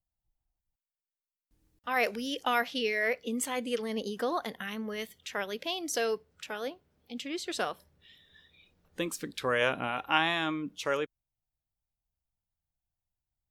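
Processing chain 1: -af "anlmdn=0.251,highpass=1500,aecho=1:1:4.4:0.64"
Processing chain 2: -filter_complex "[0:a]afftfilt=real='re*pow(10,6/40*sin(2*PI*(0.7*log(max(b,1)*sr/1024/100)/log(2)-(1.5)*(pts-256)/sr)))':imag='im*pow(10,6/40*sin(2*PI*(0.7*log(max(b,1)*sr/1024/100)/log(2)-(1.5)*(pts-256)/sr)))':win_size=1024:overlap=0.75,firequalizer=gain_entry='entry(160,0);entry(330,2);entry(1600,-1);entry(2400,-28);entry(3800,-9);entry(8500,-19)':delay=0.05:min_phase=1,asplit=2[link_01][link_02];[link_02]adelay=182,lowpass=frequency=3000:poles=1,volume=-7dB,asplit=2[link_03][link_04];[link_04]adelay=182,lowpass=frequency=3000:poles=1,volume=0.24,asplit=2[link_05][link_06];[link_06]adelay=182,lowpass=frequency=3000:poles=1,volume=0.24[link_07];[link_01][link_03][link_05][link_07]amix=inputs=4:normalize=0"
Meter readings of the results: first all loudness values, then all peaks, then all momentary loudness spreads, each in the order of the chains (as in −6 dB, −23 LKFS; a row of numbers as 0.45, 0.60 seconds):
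−34.5, −32.0 LKFS; −13.0, −13.5 dBFS; 14, 11 LU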